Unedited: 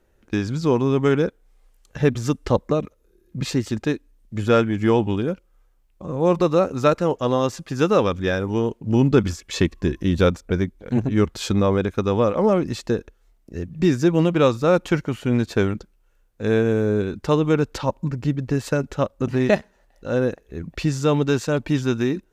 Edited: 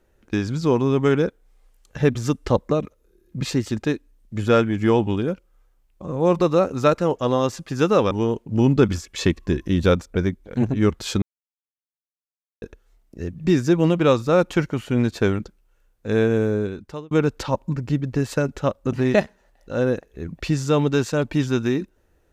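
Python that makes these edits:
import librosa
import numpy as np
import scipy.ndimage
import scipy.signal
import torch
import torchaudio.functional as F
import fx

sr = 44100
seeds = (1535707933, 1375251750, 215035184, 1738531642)

y = fx.edit(x, sr, fx.cut(start_s=8.11, length_s=0.35),
    fx.silence(start_s=11.57, length_s=1.4),
    fx.fade_out_span(start_s=16.77, length_s=0.69), tone=tone)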